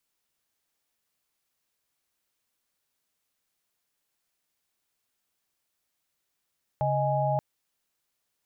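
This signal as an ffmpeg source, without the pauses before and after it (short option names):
-f lavfi -i "aevalsrc='0.0422*(sin(2*PI*138.59*t)+sin(2*PI*622.25*t)+sin(2*PI*830.61*t))':d=0.58:s=44100"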